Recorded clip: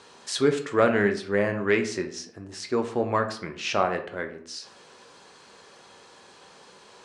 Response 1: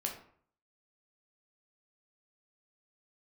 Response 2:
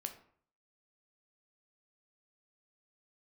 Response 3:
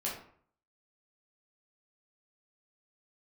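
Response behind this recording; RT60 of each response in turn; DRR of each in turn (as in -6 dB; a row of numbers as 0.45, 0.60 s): 2; 0.55, 0.55, 0.55 s; 0.5, 5.5, -5.5 dB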